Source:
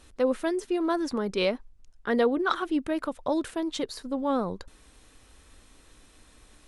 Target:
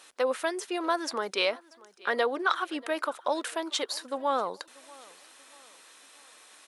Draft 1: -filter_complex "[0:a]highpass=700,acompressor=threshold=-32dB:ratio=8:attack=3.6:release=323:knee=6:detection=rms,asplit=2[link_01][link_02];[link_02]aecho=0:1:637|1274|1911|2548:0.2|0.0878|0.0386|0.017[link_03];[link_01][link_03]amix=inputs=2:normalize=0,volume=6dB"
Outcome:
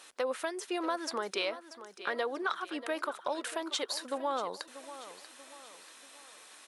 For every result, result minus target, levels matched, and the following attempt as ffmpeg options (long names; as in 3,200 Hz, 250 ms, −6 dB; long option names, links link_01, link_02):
downward compressor: peak gain reduction +8 dB; echo-to-direct +9.5 dB
-filter_complex "[0:a]highpass=700,acompressor=threshold=-23dB:ratio=8:attack=3.6:release=323:knee=6:detection=rms,asplit=2[link_01][link_02];[link_02]aecho=0:1:637|1274|1911|2548:0.2|0.0878|0.0386|0.017[link_03];[link_01][link_03]amix=inputs=2:normalize=0,volume=6dB"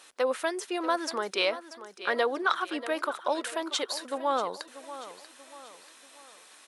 echo-to-direct +9.5 dB
-filter_complex "[0:a]highpass=700,acompressor=threshold=-23dB:ratio=8:attack=3.6:release=323:knee=6:detection=rms,asplit=2[link_01][link_02];[link_02]aecho=0:1:637|1274|1911:0.0668|0.0294|0.0129[link_03];[link_01][link_03]amix=inputs=2:normalize=0,volume=6dB"